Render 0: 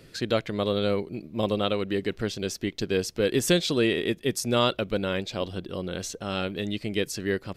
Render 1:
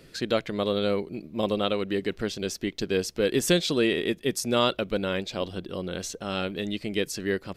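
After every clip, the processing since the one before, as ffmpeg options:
ffmpeg -i in.wav -af "equalizer=frequency=110:width=3.9:gain=-7" out.wav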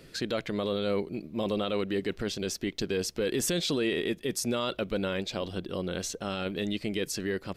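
ffmpeg -i in.wav -af "alimiter=limit=-20.5dB:level=0:latency=1:release=12" out.wav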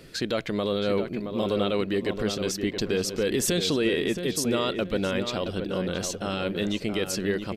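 ffmpeg -i in.wav -filter_complex "[0:a]asplit=2[link_01][link_02];[link_02]adelay=672,lowpass=frequency=2100:poles=1,volume=-7dB,asplit=2[link_03][link_04];[link_04]adelay=672,lowpass=frequency=2100:poles=1,volume=0.34,asplit=2[link_05][link_06];[link_06]adelay=672,lowpass=frequency=2100:poles=1,volume=0.34,asplit=2[link_07][link_08];[link_08]adelay=672,lowpass=frequency=2100:poles=1,volume=0.34[link_09];[link_01][link_03][link_05][link_07][link_09]amix=inputs=5:normalize=0,volume=3.5dB" out.wav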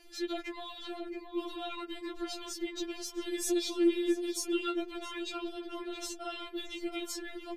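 ffmpeg -i in.wav -af "aeval=exprs='0.2*(cos(1*acos(clip(val(0)/0.2,-1,1)))-cos(1*PI/2))+0.00224*(cos(8*acos(clip(val(0)/0.2,-1,1)))-cos(8*PI/2))':channel_layout=same,afftfilt=real='re*4*eq(mod(b,16),0)':imag='im*4*eq(mod(b,16),0)':win_size=2048:overlap=0.75,volume=-6dB" out.wav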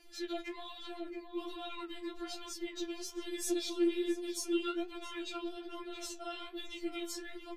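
ffmpeg -i in.wav -af "flanger=delay=9.5:depth=5.3:regen=58:speed=1.2:shape=sinusoidal,volume=1dB" out.wav

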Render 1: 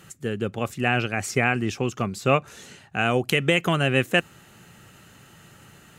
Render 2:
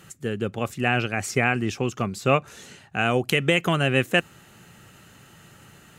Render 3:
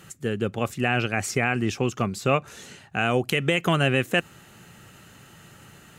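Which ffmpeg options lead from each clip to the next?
ffmpeg -i in.wav -af anull out.wav
ffmpeg -i in.wav -af "alimiter=limit=-11dB:level=0:latency=1:release=110,volume=1dB" out.wav

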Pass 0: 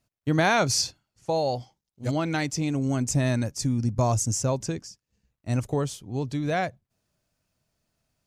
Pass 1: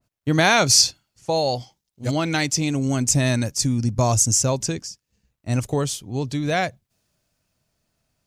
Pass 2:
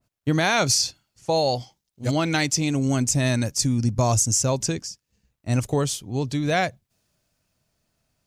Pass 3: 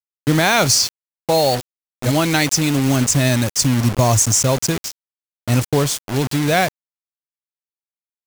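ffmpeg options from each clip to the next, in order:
ffmpeg -i in.wav -af "adynamicequalizer=threshold=0.00708:dfrequency=2100:dqfactor=0.7:tfrequency=2100:tqfactor=0.7:attack=5:release=100:ratio=0.375:range=3.5:mode=boostabove:tftype=highshelf,volume=3.5dB" out.wav
ffmpeg -i in.wav -af "alimiter=limit=-10dB:level=0:latency=1:release=226" out.wav
ffmpeg -i in.wav -af "acrusher=bits=4:mix=0:aa=0.000001,volume=5.5dB" out.wav

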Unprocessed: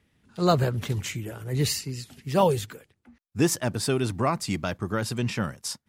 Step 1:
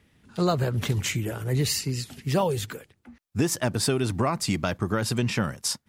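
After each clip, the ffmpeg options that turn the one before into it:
ffmpeg -i in.wav -af "acompressor=threshold=-26dB:ratio=6,volume=5.5dB" out.wav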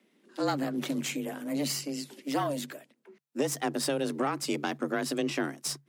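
ffmpeg -i in.wav -af "aeval=exprs='(tanh(6.31*val(0)+0.65)-tanh(0.65))/6.31':channel_layout=same,afreqshift=140,volume=-2.5dB" out.wav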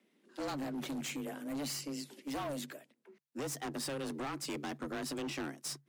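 ffmpeg -i in.wav -af "volume=30.5dB,asoftclip=hard,volume=-30.5dB,volume=-5dB" out.wav

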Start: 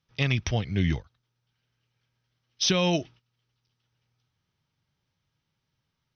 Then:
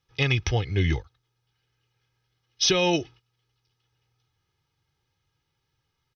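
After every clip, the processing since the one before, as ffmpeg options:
ffmpeg -i in.wav -af "aecho=1:1:2.4:0.65,volume=1.5dB" out.wav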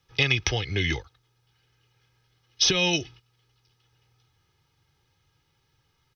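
ffmpeg -i in.wav -filter_complex "[0:a]acrossover=split=240|1800[link_01][link_02][link_03];[link_01]acompressor=threshold=-38dB:ratio=4[link_04];[link_02]acompressor=threshold=-38dB:ratio=4[link_05];[link_03]acompressor=threshold=-27dB:ratio=4[link_06];[link_04][link_05][link_06]amix=inputs=3:normalize=0,volume=7dB" out.wav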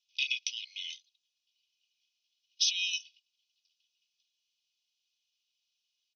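ffmpeg -i in.wav -af "asuperpass=centerf=5400:order=20:qfactor=0.68,aresample=16000,aresample=44100,volume=-6dB" out.wav

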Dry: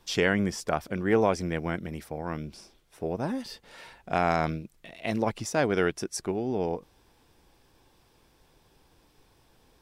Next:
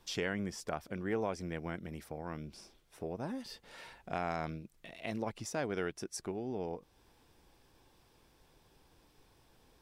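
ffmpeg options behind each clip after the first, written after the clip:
ffmpeg -i in.wav -af "acompressor=threshold=-42dB:ratio=1.5,volume=-3.5dB" out.wav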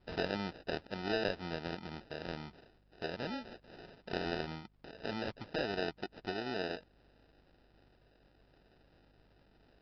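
ffmpeg -i in.wav -af "aresample=11025,acrusher=samples=10:mix=1:aa=0.000001,aresample=44100,lowshelf=frequency=230:gain=-7.5,aeval=exprs='val(0)+0.000282*(sin(2*PI*50*n/s)+sin(2*PI*2*50*n/s)/2+sin(2*PI*3*50*n/s)/3+sin(2*PI*4*50*n/s)/4+sin(2*PI*5*50*n/s)/5)':channel_layout=same,volume=2dB" out.wav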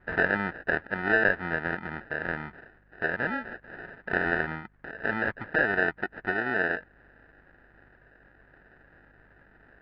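ffmpeg -i in.wav -af "lowpass=frequency=1700:width_type=q:width=5.8,volume=6dB" out.wav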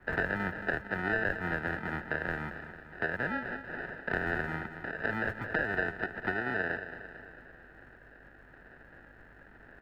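ffmpeg -i in.wav -filter_complex "[0:a]acrossover=split=130[link_01][link_02];[link_02]acompressor=threshold=-33dB:ratio=3[link_03];[link_01][link_03]amix=inputs=2:normalize=0,acrossover=split=110|1300[link_04][link_05][link_06];[link_04]acrusher=samples=41:mix=1:aa=0.000001[link_07];[link_07][link_05][link_06]amix=inputs=3:normalize=0,aecho=1:1:224|448|672|896|1120|1344:0.282|0.155|0.0853|0.0469|0.0258|0.0142,volume=2.5dB" out.wav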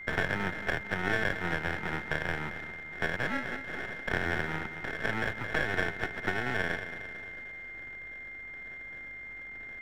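ffmpeg -i in.wav -af "aeval=exprs='if(lt(val(0),0),0.251*val(0),val(0))':channel_layout=same,aeval=exprs='val(0)+0.00562*sin(2*PI*2100*n/s)':channel_layout=same,volume=4dB" out.wav

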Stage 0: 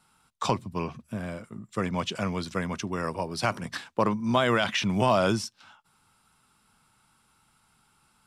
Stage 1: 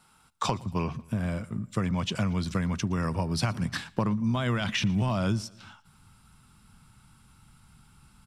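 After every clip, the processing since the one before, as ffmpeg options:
ffmpeg -i in.wav -af "asubboost=boost=5.5:cutoff=200,acompressor=threshold=-28dB:ratio=6,aecho=1:1:116|232|348:0.0708|0.0361|0.0184,volume=3.5dB" out.wav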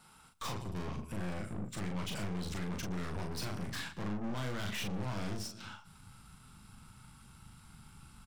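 ffmpeg -i in.wav -filter_complex "[0:a]acompressor=threshold=-32dB:ratio=1.5,aeval=exprs='(tanh(112*val(0)+0.55)-tanh(0.55))/112':channel_layout=same,asplit=2[link_01][link_02];[link_02]adelay=39,volume=-4dB[link_03];[link_01][link_03]amix=inputs=2:normalize=0,volume=2.5dB" out.wav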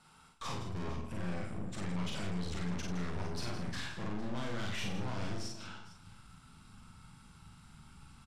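ffmpeg -i in.wav -filter_complex "[0:a]lowpass=8200,asplit=2[link_01][link_02];[link_02]aecho=0:1:51|164|457:0.668|0.299|0.158[link_03];[link_01][link_03]amix=inputs=2:normalize=0,volume=-2dB" out.wav

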